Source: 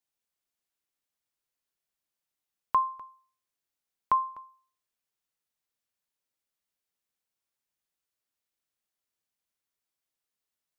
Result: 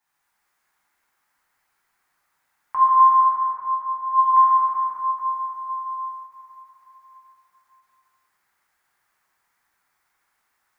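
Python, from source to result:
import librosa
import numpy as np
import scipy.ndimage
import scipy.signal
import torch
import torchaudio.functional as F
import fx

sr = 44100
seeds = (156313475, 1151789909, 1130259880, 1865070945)

y = fx.band_shelf(x, sr, hz=1300.0, db=11.5, octaves=1.7)
y = fx.over_compress(y, sr, threshold_db=-17.0, ratio=-0.5)
y = fx.comb_fb(y, sr, f0_hz=81.0, decay_s=1.7, harmonics='all', damping=0.0, mix_pct=90, at=(2.99, 4.12), fade=0.02)
y = fx.rev_plate(y, sr, seeds[0], rt60_s=4.5, hf_ratio=0.55, predelay_ms=0, drr_db=-9.5)
y = fx.end_taper(y, sr, db_per_s=170.0)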